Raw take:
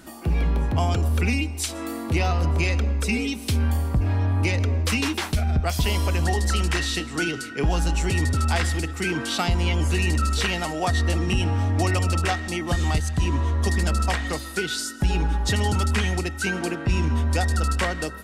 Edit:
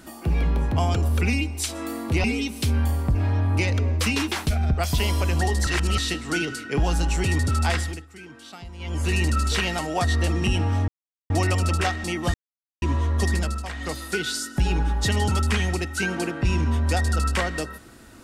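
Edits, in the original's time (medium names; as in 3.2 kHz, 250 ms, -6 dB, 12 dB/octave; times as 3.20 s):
2.24–3.10 s: delete
6.53–6.84 s: reverse
8.57–9.99 s: dip -17.5 dB, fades 0.35 s
11.74 s: insert silence 0.42 s
12.78–13.26 s: mute
13.76–14.43 s: dip -10.5 dB, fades 0.32 s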